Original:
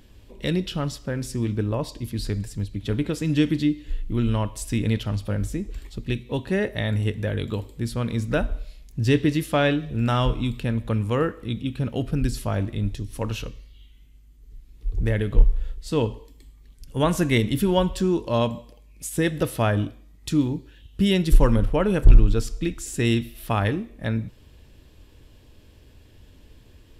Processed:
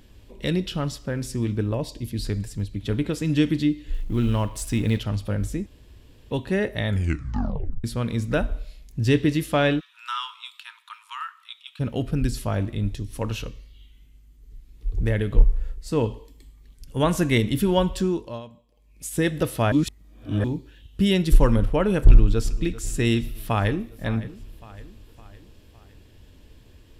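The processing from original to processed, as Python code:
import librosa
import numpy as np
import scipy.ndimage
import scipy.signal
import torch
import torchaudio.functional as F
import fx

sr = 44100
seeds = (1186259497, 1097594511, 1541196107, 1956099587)

y = fx.peak_eq(x, sr, hz=1200.0, db=-9.5, octaves=0.63, at=(1.74, 2.24))
y = fx.law_mismatch(y, sr, coded='mu', at=(3.93, 4.98), fade=0.02)
y = fx.cheby_ripple_highpass(y, sr, hz=910.0, ripple_db=6, at=(9.79, 11.79), fade=0.02)
y = fx.peak_eq(y, sr, hz=3400.0, db=-8.0, octaves=0.55, at=(15.38, 16.04))
y = fx.echo_throw(y, sr, start_s=22.04, length_s=0.47, ms=390, feedback_pct=70, wet_db=-17.0)
y = fx.echo_throw(y, sr, start_s=23.23, length_s=0.65, ms=560, feedback_pct=50, wet_db=-16.0)
y = fx.edit(y, sr, fx.room_tone_fill(start_s=5.66, length_s=0.65),
    fx.tape_stop(start_s=6.88, length_s=0.96),
    fx.fade_down_up(start_s=18.0, length_s=1.12, db=-18.5, fade_s=0.42),
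    fx.reverse_span(start_s=19.72, length_s=0.72), tone=tone)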